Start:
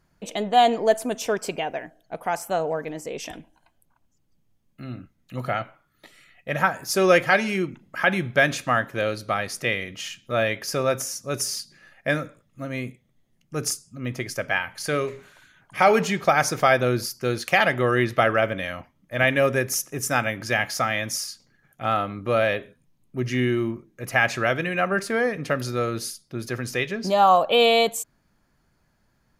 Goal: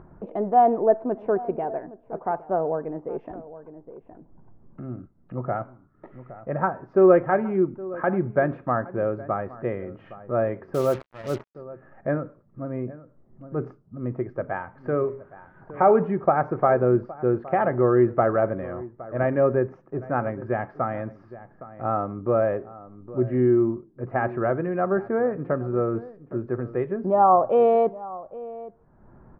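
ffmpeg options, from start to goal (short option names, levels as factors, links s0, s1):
-filter_complex "[0:a]lowpass=f=1200:w=0.5412,lowpass=f=1200:w=1.3066,equalizer=f=370:t=o:w=0.29:g=6.5,asplit=2[s0][s1];[s1]adelay=816.3,volume=0.126,highshelf=f=4000:g=-18.4[s2];[s0][s2]amix=inputs=2:normalize=0,asettb=1/sr,asplit=3[s3][s4][s5];[s3]atrim=end=10.744[s6];[s4]atrim=start=10.74:end=11.55,asetpts=PTS-STARTPTS,afade=t=in:d=0.004:c=qsin,afade=t=out:st=0.806:d=0.004:c=qsin,acrusher=bits=5:mix=0:aa=0.5[s7];[s5]atrim=start=11.546[s8];[s6][s7]acrossfade=d=0.004:c1=hsin:c2=qsin[s9];[s9][s8]acrossfade=d=0.004:c1=qsin:c2=hsin,acompressor=mode=upward:threshold=0.02:ratio=2.5"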